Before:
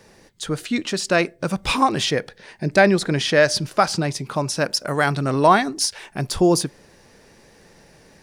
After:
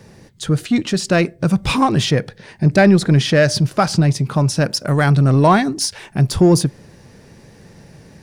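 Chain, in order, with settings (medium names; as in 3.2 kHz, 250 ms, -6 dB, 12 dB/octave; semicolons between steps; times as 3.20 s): peaking EQ 120 Hz +13 dB 2.1 oct; in parallel at -5 dB: saturation -16.5 dBFS, distortion -7 dB; on the sum: trim -2 dB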